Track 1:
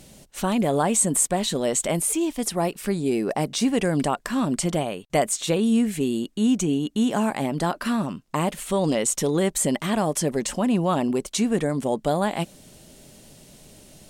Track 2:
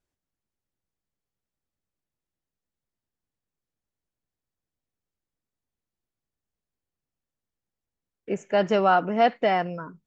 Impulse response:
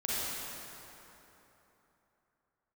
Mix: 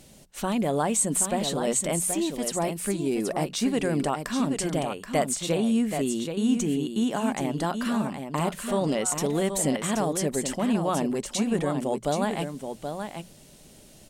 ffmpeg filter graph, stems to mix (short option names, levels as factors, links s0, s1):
-filter_complex "[0:a]bandreject=f=60:t=h:w=6,bandreject=f=120:t=h:w=6,bandreject=f=180:t=h:w=6,volume=0.668,asplit=3[s0][s1][s2];[s1]volume=0.447[s3];[1:a]alimiter=limit=0.158:level=0:latency=1,adelay=150,volume=0.531[s4];[s2]apad=whole_len=450429[s5];[s4][s5]sidechaincompress=threshold=0.0282:ratio=8:attack=16:release=539[s6];[s3]aecho=0:1:777:1[s7];[s0][s6][s7]amix=inputs=3:normalize=0"